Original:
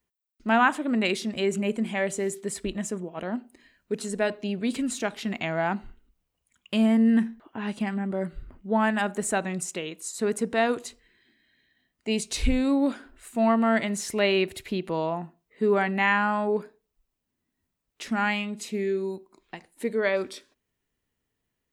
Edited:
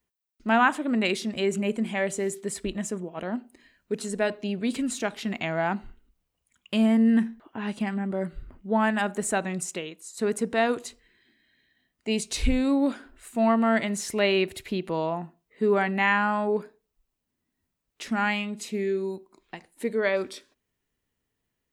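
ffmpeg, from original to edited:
ffmpeg -i in.wav -filter_complex "[0:a]asplit=2[link_01][link_02];[link_01]atrim=end=10.17,asetpts=PTS-STARTPTS,afade=type=out:start_time=9.77:duration=0.4:curve=qua:silence=0.398107[link_03];[link_02]atrim=start=10.17,asetpts=PTS-STARTPTS,afade=type=in:duration=0.004:curve=hsin:silence=0.398107[link_04];[link_03][link_04]concat=n=2:v=0:a=1" out.wav

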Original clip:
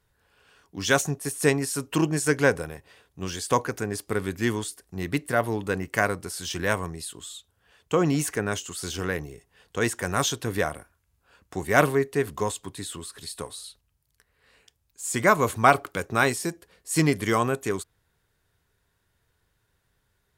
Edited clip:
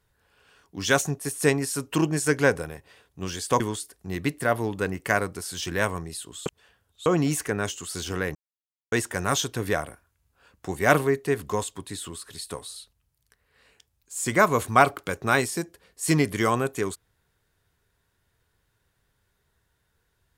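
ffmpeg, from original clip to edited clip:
ffmpeg -i in.wav -filter_complex "[0:a]asplit=6[link_01][link_02][link_03][link_04][link_05][link_06];[link_01]atrim=end=3.602[link_07];[link_02]atrim=start=4.478:end=7.342[link_08];[link_03]atrim=start=7.338:end=7.942,asetpts=PTS-STARTPTS,areverse[link_09];[link_04]atrim=start=7.938:end=9.23,asetpts=PTS-STARTPTS,afade=type=out:start_time=1.288:duration=0.004:curve=hsin[link_10];[link_05]atrim=start=9.23:end=9.8,asetpts=PTS-STARTPTS,volume=0[link_11];[link_06]atrim=start=9.8,asetpts=PTS-STARTPTS,afade=type=in:duration=0.004:curve=hsin[link_12];[link_07][link_08]acrossfade=duration=0.004:curve1=hsin:curve2=hsin[link_13];[link_13][link_09]acrossfade=duration=0.004:curve1=hsin:curve2=hsin[link_14];[link_10][link_11][link_12]concat=n=3:v=0:a=1[link_15];[link_14][link_15]acrossfade=duration=0.004:curve1=hsin:curve2=hsin" out.wav

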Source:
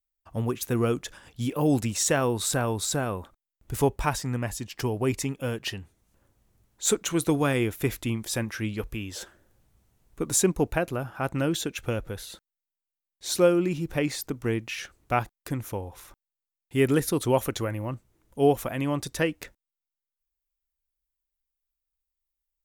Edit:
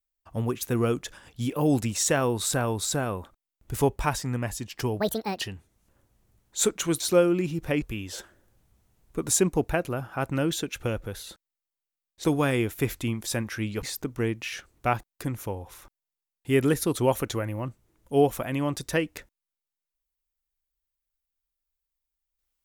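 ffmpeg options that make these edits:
ffmpeg -i in.wav -filter_complex "[0:a]asplit=7[link_01][link_02][link_03][link_04][link_05][link_06][link_07];[link_01]atrim=end=5.004[link_08];[link_02]atrim=start=5:end=5.67,asetpts=PTS-STARTPTS,asetrate=71883,aresample=44100[link_09];[link_03]atrim=start=5.666:end=7.262[link_10];[link_04]atrim=start=13.268:end=14.092[link_11];[link_05]atrim=start=8.848:end=13.272[link_12];[link_06]atrim=start=7.258:end=8.852[link_13];[link_07]atrim=start=14.088[link_14];[link_08][link_09]acrossfade=duration=0.004:curve1=hsin:curve2=hsin[link_15];[link_15][link_10]acrossfade=duration=0.004:curve1=hsin:curve2=hsin[link_16];[link_16][link_11]acrossfade=duration=0.004:curve1=hsin:curve2=hsin[link_17];[link_17][link_12]acrossfade=duration=0.004:curve1=hsin:curve2=hsin[link_18];[link_18][link_13]acrossfade=duration=0.004:curve1=hsin:curve2=hsin[link_19];[link_19][link_14]acrossfade=duration=0.004:curve1=hsin:curve2=hsin" out.wav

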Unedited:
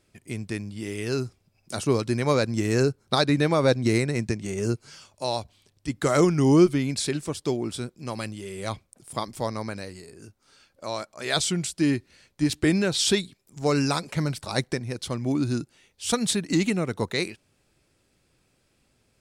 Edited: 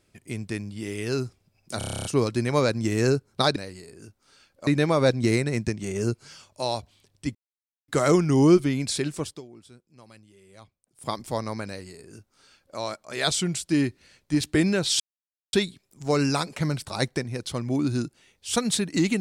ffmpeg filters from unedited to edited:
ffmpeg -i in.wav -filter_complex "[0:a]asplit=16[link_01][link_02][link_03][link_04][link_05][link_06][link_07][link_08][link_09][link_10][link_11][link_12][link_13][link_14][link_15][link_16];[link_01]atrim=end=1.812[link_17];[link_02]atrim=start=1.778:end=1.812[link_18];[link_03]atrim=start=1.778:end=1.812[link_19];[link_04]atrim=start=1.778:end=1.812[link_20];[link_05]atrim=start=1.778:end=1.812[link_21];[link_06]atrim=start=1.778:end=1.812[link_22];[link_07]atrim=start=1.778:end=1.812[link_23];[link_08]atrim=start=1.778:end=1.812[link_24];[link_09]atrim=start=1.778:end=1.812[link_25];[link_10]atrim=start=1.778:end=3.292[link_26];[link_11]atrim=start=9.758:end=10.872[link_27];[link_12]atrim=start=3.288:end=5.97,asetpts=PTS-STARTPTS,afade=type=out:start_time=2.678:duration=0.004:curve=hsin,apad=pad_dur=0.53[link_28];[link_13]atrim=start=5.97:end=7.5,asetpts=PTS-STARTPTS,afade=type=in:duration=0.004:curve=hsin,afade=type=out:start_time=1.38:duration=0.15:silence=0.11885[link_29];[link_14]atrim=start=7.5:end=9.03,asetpts=PTS-STARTPTS,volume=-18.5dB[link_30];[link_15]atrim=start=9.03:end=13.09,asetpts=PTS-STARTPTS,afade=type=in:duration=0.15:silence=0.11885,afade=type=out:start_time=4.056:duration=0.004:curve=hsin,apad=pad_dur=0.53[link_31];[link_16]atrim=start=13.09,asetpts=PTS-STARTPTS,afade=type=in:duration=0.004:curve=hsin[link_32];[link_17][link_18]acrossfade=duration=0.004:curve1=hsin:curve2=hsin[link_33];[link_33][link_19]acrossfade=duration=0.004:curve1=hsin:curve2=hsin[link_34];[link_34][link_20]acrossfade=duration=0.004:curve1=hsin:curve2=hsin[link_35];[link_35][link_21]acrossfade=duration=0.004:curve1=hsin:curve2=hsin[link_36];[link_36][link_22]acrossfade=duration=0.004:curve1=hsin:curve2=hsin[link_37];[link_37][link_23]acrossfade=duration=0.004:curve1=hsin:curve2=hsin[link_38];[link_38][link_24]acrossfade=duration=0.004:curve1=hsin:curve2=hsin[link_39];[link_39][link_25]acrossfade=duration=0.004:curve1=hsin:curve2=hsin[link_40];[link_40][link_26]acrossfade=duration=0.004:curve1=hsin:curve2=hsin[link_41];[link_41][link_27]acrossfade=duration=0.004:curve1=hsin:curve2=hsin[link_42];[link_28][link_29][link_30][link_31][link_32]concat=n=5:v=0:a=1[link_43];[link_42][link_43]acrossfade=duration=0.004:curve1=hsin:curve2=hsin" out.wav

